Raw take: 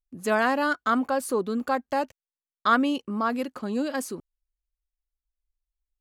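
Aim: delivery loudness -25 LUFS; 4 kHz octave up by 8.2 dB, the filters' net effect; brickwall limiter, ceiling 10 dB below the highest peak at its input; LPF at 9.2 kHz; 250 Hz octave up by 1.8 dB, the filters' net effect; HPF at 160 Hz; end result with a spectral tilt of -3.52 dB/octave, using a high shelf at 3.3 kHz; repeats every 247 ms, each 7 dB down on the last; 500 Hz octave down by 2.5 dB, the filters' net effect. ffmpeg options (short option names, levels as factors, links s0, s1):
-af "highpass=160,lowpass=9200,equalizer=f=250:t=o:g=3.5,equalizer=f=500:t=o:g=-4,highshelf=f=3300:g=3.5,equalizer=f=4000:t=o:g=8,alimiter=limit=0.133:level=0:latency=1,aecho=1:1:247|494|741|988|1235:0.447|0.201|0.0905|0.0407|0.0183,volume=1.33"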